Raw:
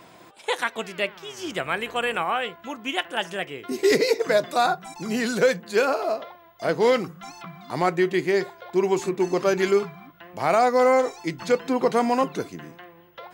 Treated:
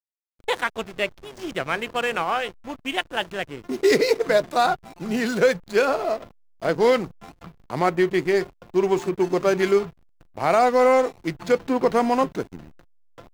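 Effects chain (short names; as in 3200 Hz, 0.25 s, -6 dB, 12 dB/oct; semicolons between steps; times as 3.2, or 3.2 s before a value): backlash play -30 dBFS; gain +1.5 dB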